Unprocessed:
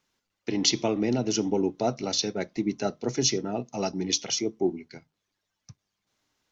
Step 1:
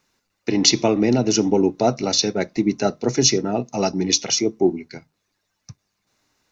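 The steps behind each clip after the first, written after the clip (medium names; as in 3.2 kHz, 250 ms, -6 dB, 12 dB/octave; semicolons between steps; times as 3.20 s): band-stop 3.2 kHz, Q 6.9; trim +8 dB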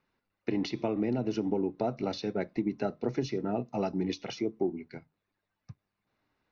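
compression, threshold -19 dBFS, peak gain reduction 9.5 dB; distance through air 330 m; trim -6 dB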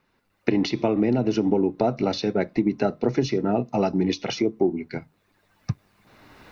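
recorder AGC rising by 14 dB/s; trim +8.5 dB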